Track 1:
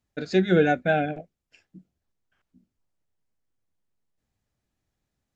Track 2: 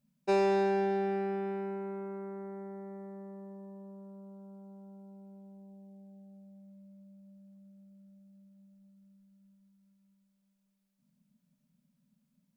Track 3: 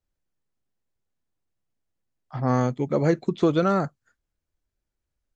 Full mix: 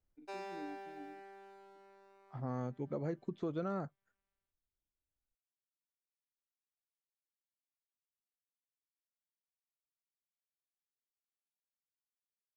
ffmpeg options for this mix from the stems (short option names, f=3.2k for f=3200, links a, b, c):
-filter_complex "[0:a]asplit=3[a][b][c];[a]bandpass=f=300:t=q:w=8,volume=0dB[d];[b]bandpass=f=870:t=q:w=8,volume=-6dB[e];[c]bandpass=f=2.24k:t=q:w=8,volume=-9dB[f];[d][e][f]amix=inputs=3:normalize=0,volume=-20dB[g];[1:a]highpass=660,aeval=exprs='sgn(val(0))*max(abs(val(0))-0.0015,0)':c=same,volume=-12dB[h];[2:a]volume=-1dB,afade=t=out:st=1.58:d=0.79:silence=0.237137,asplit=2[i][j];[j]apad=whole_len=553985[k];[h][k]sidechaincompress=threshold=-39dB:ratio=8:attack=16:release=139[l];[g][i]amix=inputs=2:normalize=0,highshelf=f=2.1k:g=-9.5,alimiter=level_in=3.5dB:limit=-24dB:level=0:latency=1:release=281,volume=-3.5dB,volume=0dB[m];[l][m]amix=inputs=2:normalize=0"